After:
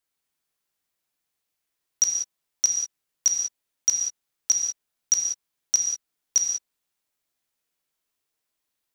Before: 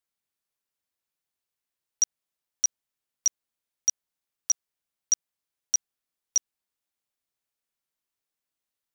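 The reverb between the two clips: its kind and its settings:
reverb whose tail is shaped and stops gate 210 ms flat, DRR 0.5 dB
level +3.5 dB

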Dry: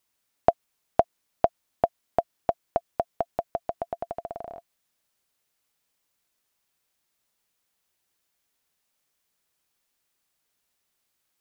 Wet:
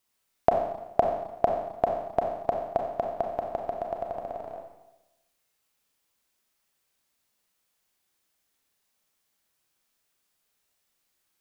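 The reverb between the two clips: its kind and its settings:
four-comb reverb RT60 0.98 s, combs from 29 ms, DRR 1 dB
level −1.5 dB

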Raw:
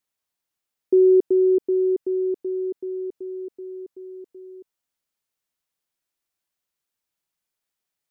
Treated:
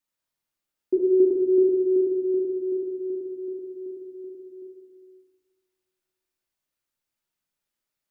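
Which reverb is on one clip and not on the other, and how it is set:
rectangular room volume 1,200 cubic metres, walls mixed, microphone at 2.6 metres
level −5.5 dB

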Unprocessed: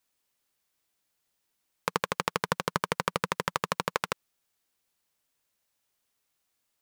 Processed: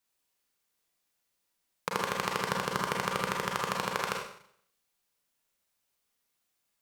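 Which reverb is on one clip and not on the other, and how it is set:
four-comb reverb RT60 0.63 s, combs from 32 ms, DRR −0.5 dB
level −4 dB

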